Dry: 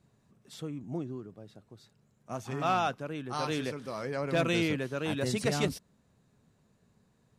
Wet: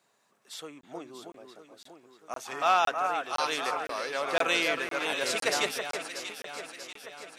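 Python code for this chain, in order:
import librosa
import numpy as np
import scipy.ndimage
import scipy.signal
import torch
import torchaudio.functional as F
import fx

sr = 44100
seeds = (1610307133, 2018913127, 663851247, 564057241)

p1 = scipy.signal.sosfilt(scipy.signal.butter(2, 700.0, 'highpass', fs=sr, output='sos'), x)
p2 = p1 + fx.echo_alternate(p1, sr, ms=319, hz=2200.0, feedback_pct=74, wet_db=-6.0, dry=0)
p3 = fx.buffer_crackle(p2, sr, first_s=0.81, period_s=0.51, block=1024, kind='zero')
y = F.gain(torch.from_numpy(p3), 6.5).numpy()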